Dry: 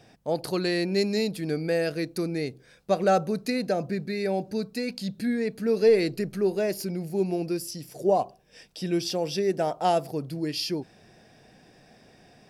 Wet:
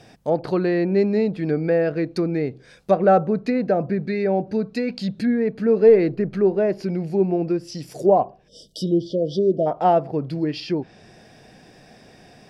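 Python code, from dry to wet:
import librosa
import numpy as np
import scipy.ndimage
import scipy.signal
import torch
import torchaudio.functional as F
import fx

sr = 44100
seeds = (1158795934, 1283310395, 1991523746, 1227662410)

y = fx.spec_erase(x, sr, start_s=8.48, length_s=1.18, low_hz=670.0, high_hz=2900.0)
y = fx.env_lowpass_down(y, sr, base_hz=1500.0, full_db=-24.5)
y = F.gain(torch.from_numpy(y), 6.5).numpy()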